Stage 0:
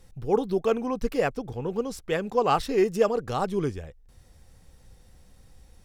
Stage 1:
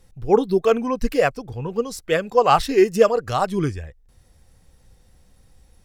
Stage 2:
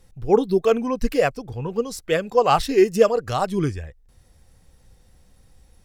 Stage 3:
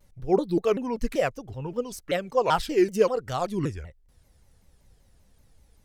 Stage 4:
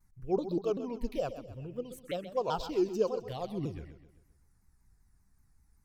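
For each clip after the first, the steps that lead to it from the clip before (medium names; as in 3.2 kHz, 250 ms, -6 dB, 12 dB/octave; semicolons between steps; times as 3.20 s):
spectral noise reduction 8 dB; trim +7.5 dB
dynamic bell 1.3 kHz, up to -3 dB, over -29 dBFS, Q 0.79
vibrato with a chosen wave saw down 5.2 Hz, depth 250 cents; trim -5.5 dB
touch-sensitive phaser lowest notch 530 Hz, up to 2 kHz, full sweep at -21.5 dBFS; modulated delay 129 ms, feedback 43%, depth 64 cents, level -12 dB; trim -7.5 dB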